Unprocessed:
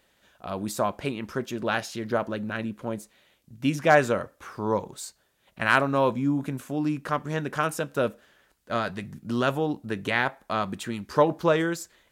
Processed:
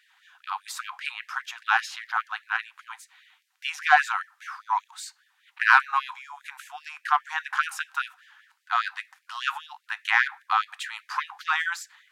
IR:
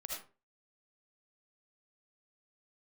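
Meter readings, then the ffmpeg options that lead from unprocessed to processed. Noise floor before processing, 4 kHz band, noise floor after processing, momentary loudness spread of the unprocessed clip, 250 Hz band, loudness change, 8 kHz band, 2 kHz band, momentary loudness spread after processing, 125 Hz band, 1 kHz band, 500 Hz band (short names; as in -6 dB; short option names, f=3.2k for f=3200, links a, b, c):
-67 dBFS, +2.5 dB, -70 dBFS, 12 LU, under -40 dB, +0.5 dB, -1.5 dB, +5.0 dB, 20 LU, under -40 dB, +2.5 dB, under -20 dB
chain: -filter_complex "[0:a]asplit=2[a][b];[b]highpass=f=720:p=1,volume=9dB,asoftclip=type=tanh:threshold=-4.5dB[c];[a][c]amix=inputs=2:normalize=0,lowpass=f=1.6k:p=1,volume=-6dB,acontrast=46,afftfilt=real='re*gte(b*sr/1024,690*pow(1700/690,0.5+0.5*sin(2*PI*5*pts/sr)))':imag='im*gte(b*sr/1024,690*pow(1700/690,0.5+0.5*sin(2*PI*5*pts/sr)))':win_size=1024:overlap=0.75"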